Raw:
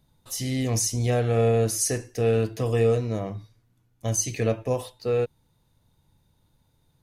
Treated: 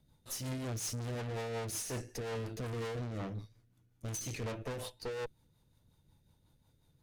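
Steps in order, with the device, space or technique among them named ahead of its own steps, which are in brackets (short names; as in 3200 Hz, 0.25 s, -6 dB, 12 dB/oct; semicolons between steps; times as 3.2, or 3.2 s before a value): overdriven rotary cabinet (tube stage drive 38 dB, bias 0.75; rotary speaker horn 5.5 Hz); gain +2.5 dB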